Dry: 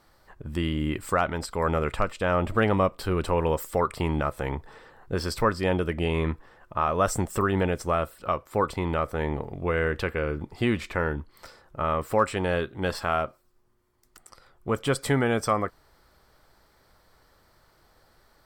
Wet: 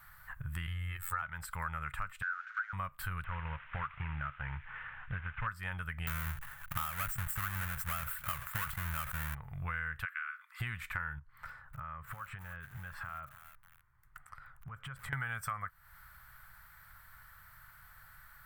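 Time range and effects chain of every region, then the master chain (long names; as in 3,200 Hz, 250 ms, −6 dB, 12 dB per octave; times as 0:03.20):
0:00.67–0:01.22: comb filter 2.3 ms, depth 90% + phases set to zero 88.4 Hz
0:02.22–0:02.73: linear delta modulator 32 kbit/s, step −32.5 dBFS + four-pole ladder high-pass 1,400 Hz, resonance 85%
0:03.24–0:05.47: variable-slope delta modulation 16 kbit/s + delay with a high-pass on its return 80 ms, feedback 62%, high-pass 2,400 Hz, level −9.5 dB
0:06.07–0:09.35: each half-wave held at its own peak + level that may fall only so fast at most 110 dB per second
0:10.05–0:10.60: Butterworth high-pass 1,100 Hz 72 dB per octave + high-shelf EQ 7,900 Hz −9.5 dB
0:11.19–0:15.13: low-pass filter 1,300 Hz 6 dB per octave + downward compressor, threshold −42 dBFS + feedback echo at a low word length 300 ms, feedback 55%, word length 8 bits, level −12 dB
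whole clip: drawn EQ curve 140 Hz 0 dB, 310 Hz −29 dB, 450 Hz −24 dB, 1,500 Hz +8 dB, 5,000 Hz −11 dB, 15,000 Hz +12 dB; downward compressor 4 to 1, threshold −41 dBFS; level +3 dB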